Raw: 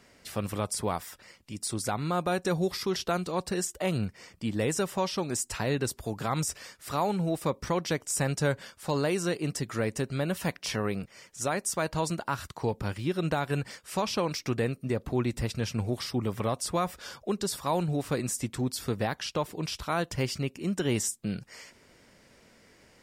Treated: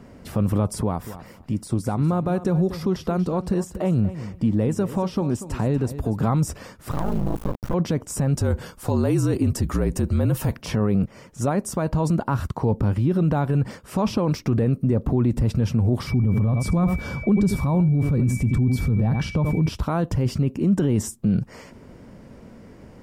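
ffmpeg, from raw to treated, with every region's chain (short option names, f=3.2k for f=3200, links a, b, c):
-filter_complex "[0:a]asettb=1/sr,asplit=3[a][b][c];[a]atrim=end=0.804[d];[b]atrim=start=0.8:end=6.23,asetpts=PTS-STARTPTS,afade=t=in:d=0.004:c=qsin,afade=t=out:st=5.426:d=0.004:c=qsin,acompressor=threshold=-39dB:ratio=2:attack=3.2:release=140:knee=1:detection=peak,aecho=1:1:239|478:0.2|0.0339,atrim=end_sample=239463[e];[c]atrim=start=6.226[f];[d][e]acrossfade=d=0.004:c1=hsin:c2=qsin[g];[g][f]acrossfade=d=0.004:c1=qsin:c2=hsin,asettb=1/sr,asplit=3[h][i][j];[h]atrim=end=6.914[k];[i]atrim=start=6.91:end=7.74,asetpts=PTS-STARTPTS,afade=t=in:d=0.004:c=qsin,afade=t=out:st=0.826:d=0.004:c=qsin,bandreject=f=60:t=h:w=6,bandreject=f=120:t=h:w=6,bandreject=f=180:t=h:w=6,bandreject=f=240:t=h:w=6,bandreject=f=300:t=h:w=6,bandreject=f=360:t=h:w=6,bandreject=f=420:t=h:w=6,aeval=exprs='val(0)*sin(2*PI*27*n/s)':c=same,acrusher=bits=4:dc=4:mix=0:aa=0.000001[l];[j]atrim=start=7.736[m];[k][l]acrossfade=d=0.004:c1=hsin:c2=qsin[n];[n][m]acrossfade=d=0.004:c1=qsin:c2=hsin,asettb=1/sr,asplit=3[o][p][q];[o]atrim=end=8.354[r];[p]atrim=start=8.35:end=10.62,asetpts=PTS-STARTPTS,afade=t=in:d=0.004:c=qsin,afade=t=out:st=2.266:d=0.004:c=qsin,aemphasis=mode=production:type=cd,afreqshift=-46[s];[q]atrim=start=10.616[t];[r][s]acrossfade=d=0.004:c1=hsin:c2=qsin[u];[u][t]acrossfade=d=0.004:c1=qsin:c2=hsin,asettb=1/sr,asplit=3[v][w][x];[v]atrim=end=16.074[y];[w]atrim=start=16.07:end=19.69,asetpts=PTS-STARTPTS,afade=t=in:d=0.004:c=qsin,afade=t=out:st=3.616:d=0.004:c=qsin,bass=f=250:g=12,treble=f=4k:g=-1,aeval=exprs='val(0)+0.0178*sin(2*PI*2300*n/s)':c=same,aecho=1:1:82:0.188,atrim=end_sample=159642[z];[x]atrim=start=19.686[aa];[y][z]acrossfade=d=0.004:c1=hsin:c2=qsin[ab];[ab][aa]acrossfade=d=0.004:c1=qsin:c2=hsin,bass=f=250:g=12,treble=f=4k:g=-5,alimiter=limit=-22.5dB:level=0:latency=1:release=21,equalizer=f=250:t=o:w=1:g=5,equalizer=f=500:t=o:w=1:g=4,equalizer=f=1k:t=o:w=1:g=4,equalizer=f=2k:t=o:w=1:g=-5,equalizer=f=4k:t=o:w=1:g=-5,equalizer=f=8k:t=o:w=1:g=-3,volume=6.5dB"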